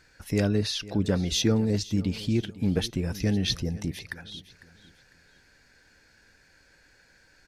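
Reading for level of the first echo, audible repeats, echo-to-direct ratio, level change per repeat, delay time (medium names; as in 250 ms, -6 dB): -18.0 dB, 2, -17.5 dB, -10.0 dB, 501 ms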